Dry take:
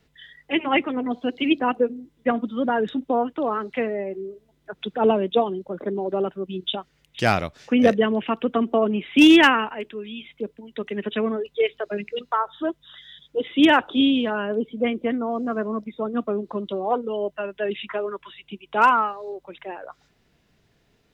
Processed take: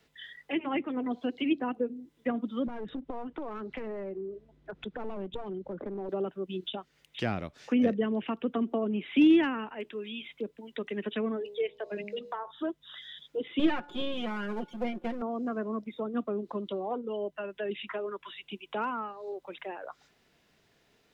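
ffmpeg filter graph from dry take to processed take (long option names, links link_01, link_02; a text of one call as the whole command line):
ffmpeg -i in.wav -filter_complex "[0:a]asettb=1/sr,asplit=3[link_01][link_02][link_03];[link_01]atrim=end=2.674[link_04];[link_02]atrim=start=2.67:end=6.09,asetpts=PTS-STARTPTS,afade=type=in:duration=0.004:curve=qsin,afade=type=out:start_time=3.416:duration=0.004:curve=qsin,aeval=exprs='clip(val(0),-1,0.0562)':channel_layout=same,aemphasis=mode=reproduction:type=riaa,acompressor=threshold=-33dB:ratio=2.5:attack=3.2:release=140:knee=1:detection=peak[link_05];[link_03]atrim=start=6.086[link_06];[link_04][link_05]acrossfade=duration=0.004:curve1=hsin:curve2=qsin[link_07];[link_07][link_06]acrossfade=duration=0.004:curve1=qsin:curve2=hsin,asettb=1/sr,asplit=3[link_08][link_09][link_10];[link_08]atrim=end=11.384[link_11];[link_09]atrim=start=11.38:end=12.51,asetpts=PTS-STARTPTS,afade=type=in:duration=0.004:curve=qsin,afade=type=out:start_time=1.126:duration=0.004:curve=qsin,equalizer=frequency=1300:width=4.9:gain=-10,bandreject=frequency=68.63:width_type=h:width=4,bandreject=frequency=137.26:width_type=h:width=4,bandreject=frequency=205.89:width_type=h:width=4,bandreject=frequency=274.52:width_type=h:width=4,bandreject=frequency=343.15:width_type=h:width=4,bandreject=frequency=411.78:width_type=h:width=4,bandreject=frequency=480.41:width_type=h:width=4,bandreject=frequency=549.04:width_type=h:width=4,bandreject=frequency=617.67:width_type=h:width=4,bandreject=frequency=686.3:width_type=h:width=4,bandreject=frequency=754.93:width_type=h:width=4,bandreject=frequency=823.56:width_type=h:width=4,bandreject=frequency=892.19:width_type=h:width=4,bandreject=frequency=960.82:width_type=h:width=4,bandreject=frequency=1029.45:width_type=h:width=4,bandreject=frequency=1098.08:width_type=h:width=4,bandreject=frequency=1166.71:width_type=h:width=4[link_12];[link_10]atrim=start=12.506[link_13];[link_11][link_12]acrossfade=duration=0.004:curve1=hsin:curve2=qsin[link_14];[link_14][link_13]acrossfade=duration=0.004:curve1=qsin:curve2=hsin,asettb=1/sr,asplit=3[link_15][link_16][link_17];[link_15]atrim=end=13.594[link_18];[link_16]atrim=start=13.59:end=15.22,asetpts=PTS-STARTPTS,afade=type=in:duration=0.004:curve=qsin,afade=type=out:start_time=1.626:duration=0.004:curve=qsin,aeval=exprs='if(lt(val(0),0),0.251*val(0),val(0))':channel_layout=same,aecho=1:1:5.6:0.76,atrim=end_sample=71883,bandreject=frequency=289.3:width_type=h:width=4,bandreject=frequency=578.6:width_type=h:width=4,bandreject=frequency=867.9:width_type=h:width=4,bandreject=frequency=1157.2:width_type=h:width=4,bandreject=frequency=1446.5:width_type=h:width=4,bandreject=frequency=1735.8:width_type=h:width=4[link_19];[link_17]atrim=start=15.216[link_20];[link_18][link_19]acrossfade=duration=0.004:curve1=hsin:curve2=qsin[link_21];[link_21][link_20]acrossfade=duration=0.004:curve1=qsin:curve2=hsin,acrossover=split=3900[link_22][link_23];[link_23]acompressor=threshold=-51dB:ratio=4:attack=1:release=60[link_24];[link_22][link_24]amix=inputs=2:normalize=0,lowshelf=frequency=200:gain=-12,acrossover=split=330[link_25][link_26];[link_26]acompressor=threshold=-38dB:ratio=3[link_27];[link_25][link_27]amix=inputs=2:normalize=0" out.wav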